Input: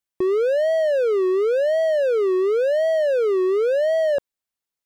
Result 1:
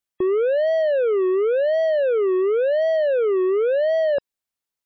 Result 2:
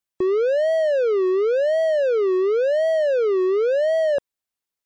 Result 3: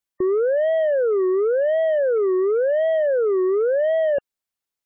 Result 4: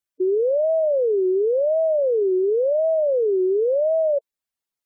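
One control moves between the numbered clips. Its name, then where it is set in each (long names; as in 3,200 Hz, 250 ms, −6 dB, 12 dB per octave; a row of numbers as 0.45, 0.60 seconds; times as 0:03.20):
gate on every frequency bin, under each frame's peak: −40, −55, −30, −10 decibels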